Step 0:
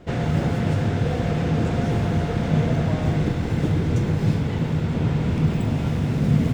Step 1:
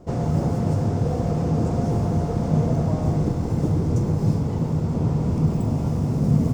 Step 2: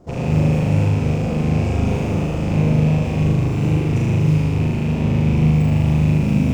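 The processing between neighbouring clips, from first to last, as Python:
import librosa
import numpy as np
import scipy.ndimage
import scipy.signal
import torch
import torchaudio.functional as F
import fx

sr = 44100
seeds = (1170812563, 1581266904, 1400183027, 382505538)

y1 = fx.band_shelf(x, sr, hz=2400.0, db=-13.0, octaves=1.7)
y2 = fx.rattle_buzz(y1, sr, strikes_db=-23.0, level_db=-26.0)
y2 = fx.room_flutter(y2, sr, wall_m=6.7, rt60_s=1.4)
y2 = F.gain(torch.from_numpy(y2), -2.0).numpy()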